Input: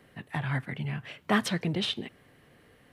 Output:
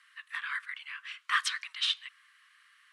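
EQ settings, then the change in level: Chebyshev high-pass 1.1 kHz, order 6; low-pass 10 kHz 24 dB/octave; +2.5 dB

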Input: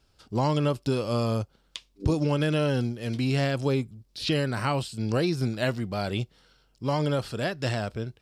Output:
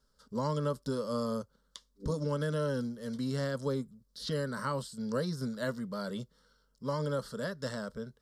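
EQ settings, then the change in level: static phaser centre 500 Hz, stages 8; -4.0 dB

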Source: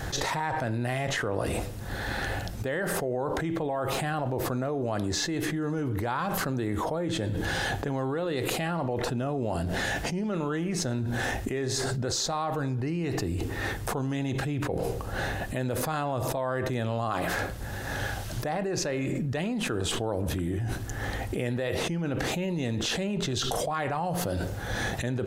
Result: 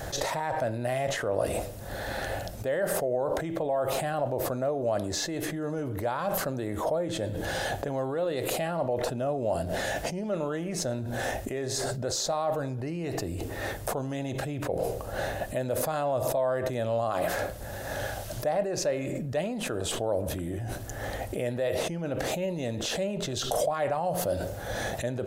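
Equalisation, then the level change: peaking EQ 600 Hz +12 dB 0.56 oct; treble shelf 7 kHz +8.5 dB; -4.5 dB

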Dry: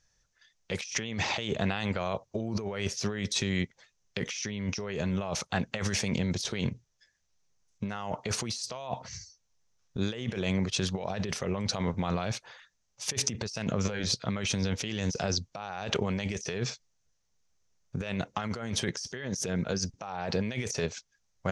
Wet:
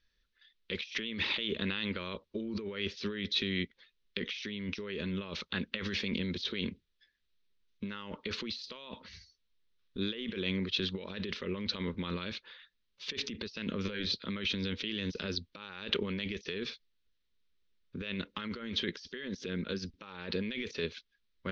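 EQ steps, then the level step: resonant low-pass 3.8 kHz, resonance Q 3.1; distance through air 210 m; static phaser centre 300 Hz, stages 4; -1.0 dB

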